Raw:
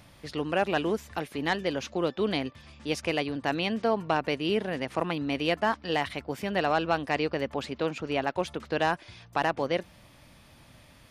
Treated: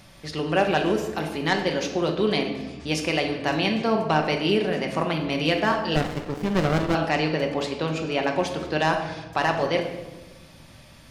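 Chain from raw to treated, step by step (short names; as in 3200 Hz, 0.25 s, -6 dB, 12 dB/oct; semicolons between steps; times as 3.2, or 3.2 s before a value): bell 5600 Hz +4.5 dB 1.2 oct; shoebox room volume 630 m³, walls mixed, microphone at 1.1 m; 5.96–6.95 running maximum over 33 samples; gain +2.5 dB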